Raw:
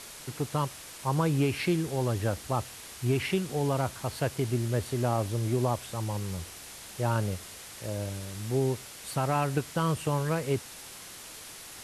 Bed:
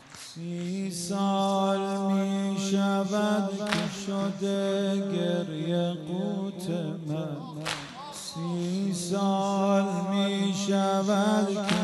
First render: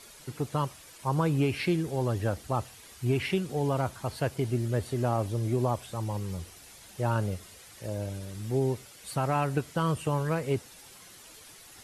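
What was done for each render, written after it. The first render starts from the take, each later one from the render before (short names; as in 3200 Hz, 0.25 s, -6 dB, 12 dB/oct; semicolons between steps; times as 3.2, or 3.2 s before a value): denoiser 9 dB, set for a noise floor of -46 dBFS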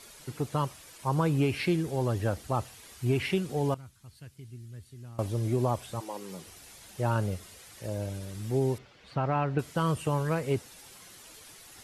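3.74–5.19 passive tone stack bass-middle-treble 6-0-2; 5.99–6.46 HPF 360 Hz -> 160 Hz 24 dB/oct; 8.78–9.59 air absorption 230 m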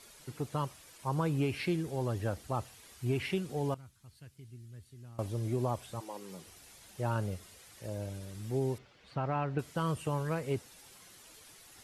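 gain -5 dB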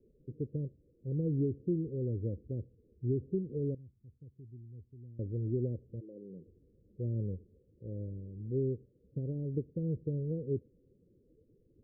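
steep low-pass 500 Hz 72 dB/oct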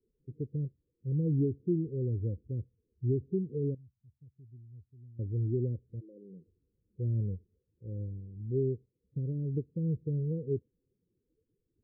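in parallel at -1 dB: limiter -32 dBFS, peak gain reduction 10 dB; on the sum: spectral expander 1.5:1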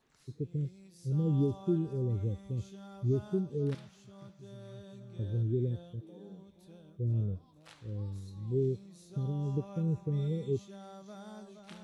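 add bed -24 dB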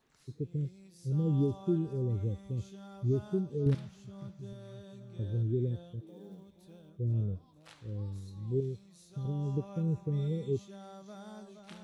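3.66–4.53 low shelf 220 Hz +11 dB; 6.07–6.89 short-mantissa float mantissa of 4-bit; 8.6–9.25 bell 300 Hz -8.5 dB 2.1 oct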